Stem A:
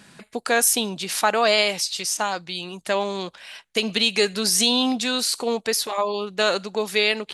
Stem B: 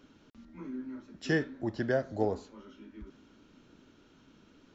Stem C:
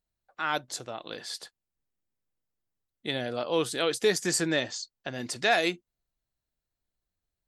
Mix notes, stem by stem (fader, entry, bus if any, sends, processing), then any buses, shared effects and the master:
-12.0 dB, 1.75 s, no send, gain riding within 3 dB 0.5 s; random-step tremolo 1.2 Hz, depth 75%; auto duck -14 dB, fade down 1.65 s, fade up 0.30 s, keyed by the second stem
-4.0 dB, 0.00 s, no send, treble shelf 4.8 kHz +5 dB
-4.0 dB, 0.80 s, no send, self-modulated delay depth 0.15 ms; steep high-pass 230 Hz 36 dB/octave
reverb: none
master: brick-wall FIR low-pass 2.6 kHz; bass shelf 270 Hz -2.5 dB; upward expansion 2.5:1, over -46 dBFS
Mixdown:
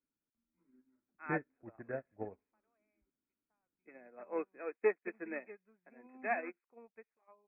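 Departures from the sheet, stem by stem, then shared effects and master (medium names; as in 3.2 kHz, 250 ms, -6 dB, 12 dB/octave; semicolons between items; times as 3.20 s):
stem A: entry 1.75 s -> 1.30 s; master: missing bass shelf 270 Hz -2.5 dB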